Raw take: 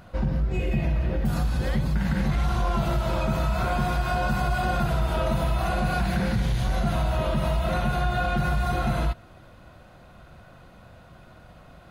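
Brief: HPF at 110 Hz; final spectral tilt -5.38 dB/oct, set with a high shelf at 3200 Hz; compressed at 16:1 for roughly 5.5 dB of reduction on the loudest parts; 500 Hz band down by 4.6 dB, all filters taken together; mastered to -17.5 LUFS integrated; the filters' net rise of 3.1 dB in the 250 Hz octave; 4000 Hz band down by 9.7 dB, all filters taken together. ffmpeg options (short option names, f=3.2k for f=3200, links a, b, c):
-af "highpass=110,equalizer=f=250:t=o:g=7,equalizer=f=500:t=o:g=-8,highshelf=f=3.2k:g=-8.5,equalizer=f=4k:t=o:g=-6.5,acompressor=threshold=-25dB:ratio=16,volume=13.5dB"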